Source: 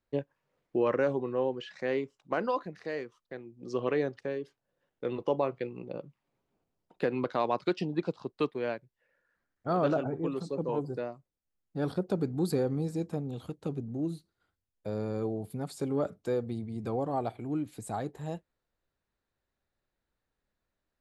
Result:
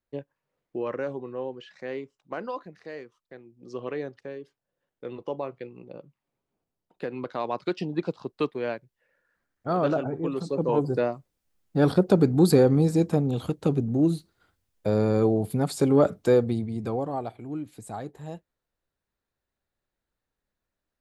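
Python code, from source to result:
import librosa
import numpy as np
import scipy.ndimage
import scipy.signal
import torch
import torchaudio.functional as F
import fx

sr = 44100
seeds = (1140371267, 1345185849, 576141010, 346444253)

y = fx.gain(x, sr, db=fx.line((7.08, -3.5), (8.0, 3.0), (10.21, 3.0), (11.05, 11.0), (16.37, 11.0), (17.29, -1.0)))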